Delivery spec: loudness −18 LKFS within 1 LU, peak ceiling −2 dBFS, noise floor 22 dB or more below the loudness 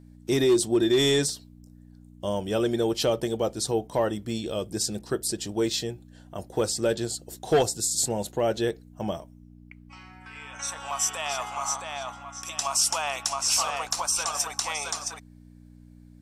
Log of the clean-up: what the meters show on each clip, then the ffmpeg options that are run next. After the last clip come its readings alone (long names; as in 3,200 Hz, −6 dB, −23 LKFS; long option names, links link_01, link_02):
mains hum 60 Hz; hum harmonics up to 300 Hz; level of the hum −48 dBFS; integrated loudness −26.5 LKFS; sample peak −11.0 dBFS; target loudness −18.0 LKFS
→ -af "bandreject=frequency=60:width_type=h:width=4,bandreject=frequency=120:width_type=h:width=4,bandreject=frequency=180:width_type=h:width=4,bandreject=frequency=240:width_type=h:width=4,bandreject=frequency=300:width_type=h:width=4"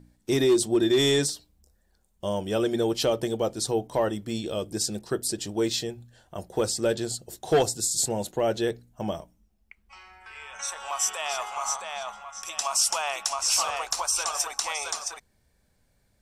mains hum none found; integrated loudness −26.5 LKFS; sample peak −11.0 dBFS; target loudness −18.0 LKFS
→ -af "volume=8.5dB"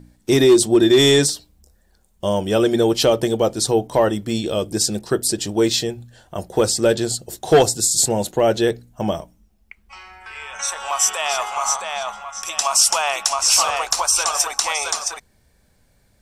integrated loudness −18.0 LKFS; sample peak −2.5 dBFS; background noise floor −59 dBFS